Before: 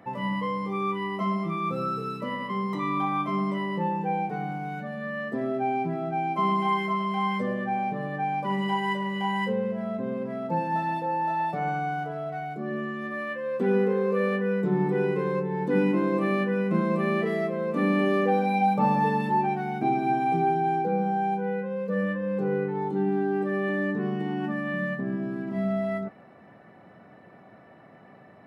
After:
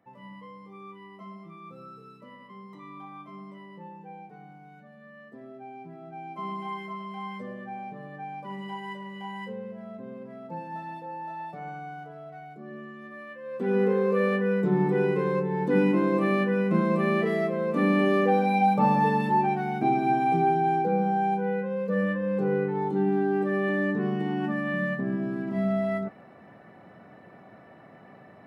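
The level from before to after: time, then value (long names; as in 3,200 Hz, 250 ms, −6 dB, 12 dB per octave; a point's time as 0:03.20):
0:05.72 −16.5 dB
0:06.48 −10 dB
0:13.36 −10 dB
0:13.86 +1 dB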